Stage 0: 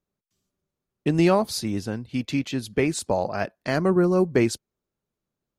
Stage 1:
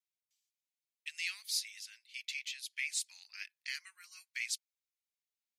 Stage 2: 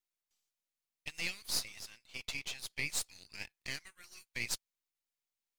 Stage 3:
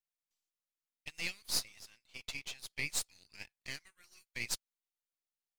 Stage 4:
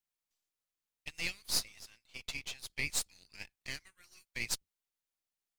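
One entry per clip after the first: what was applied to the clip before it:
elliptic high-pass filter 2,100 Hz, stop band 80 dB; level −4 dB
gain on one half-wave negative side −12 dB; level +3.5 dB
expander for the loud parts 1.5 to 1, over −48 dBFS; level +1.5 dB
sub-octave generator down 2 octaves, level −2 dB; level +1.5 dB

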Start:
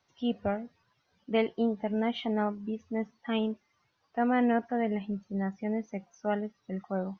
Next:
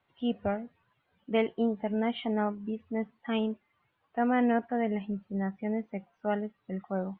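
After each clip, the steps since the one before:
Butterworth low-pass 3,400 Hz 36 dB per octave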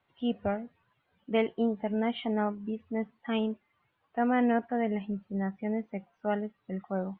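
no processing that can be heard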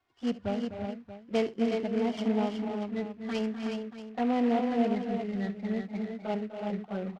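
flanger swept by the level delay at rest 2.8 ms, full sweep at −25 dBFS
multi-tap delay 70/251/283/333/367/631 ms −17.5/−11/−11/−10/−5.5/−13.5 dB
short delay modulated by noise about 1,700 Hz, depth 0.035 ms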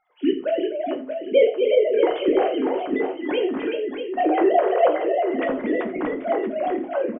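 three sine waves on the formant tracks
multi-tap delay 84/633 ms −16.5/−9.5 dB
convolution reverb RT60 0.35 s, pre-delay 6 ms, DRR 4 dB
level +7 dB

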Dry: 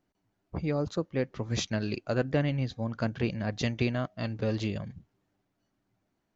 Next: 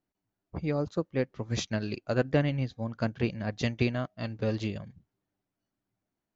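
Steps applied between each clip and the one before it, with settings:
expander for the loud parts 1.5 to 1, over −45 dBFS
level +2.5 dB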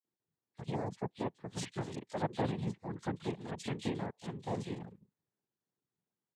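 cochlear-implant simulation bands 6
multiband delay without the direct sound highs, lows 40 ms, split 2,800 Hz
level −7.5 dB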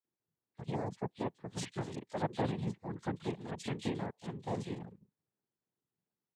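one half of a high-frequency compander decoder only

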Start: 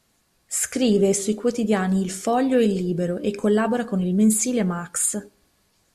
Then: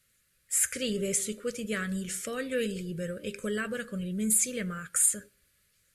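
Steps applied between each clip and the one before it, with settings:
drawn EQ curve 130 Hz 0 dB, 300 Hz −12 dB, 560 Hz −2 dB, 810 Hz −29 dB, 1,300 Hz +1 dB, 2,000 Hz +5 dB, 5,400 Hz −1 dB, 10,000 Hz +7 dB
level −6.5 dB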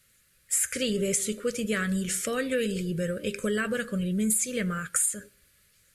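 downward compressor 6 to 1, threshold −29 dBFS, peak gain reduction 9.5 dB
level +6 dB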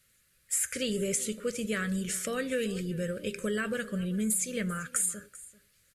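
single-tap delay 390 ms −19 dB
level −3.5 dB

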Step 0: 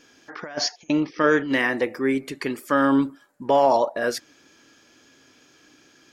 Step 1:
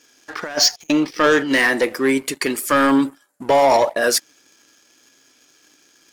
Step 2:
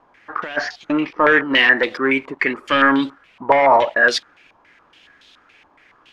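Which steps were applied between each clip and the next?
high-pass filter 260 Hz 6 dB per octave; parametric band 10,000 Hz +12 dB 1.6 octaves; leveller curve on the samples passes 2
in parallel at −11 dB: bit-depth reduction 6 bits, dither triangular; on the sum: low-pass on a step sequencer 7.1 Hz 980–3,600 Hz; level −4.5 dB

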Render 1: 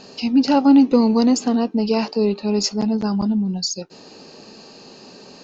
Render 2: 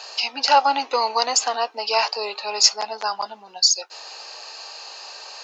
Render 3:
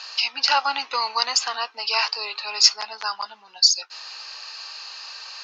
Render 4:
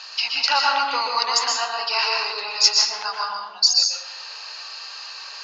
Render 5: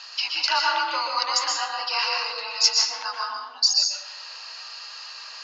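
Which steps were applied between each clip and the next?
high-pass filter 730 Hz 24 dB per octave; level +8 dB
flat-topped bell 2,500 Hz +13 dB 2.9 octaves; level −11.5 dB
dense smooth reverb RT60 0.9 s, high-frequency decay 0.55×, pre-delay 110 ms, DRR −1 dB; level −1 dB
frequency shifter +49 Hz; level −3 dB

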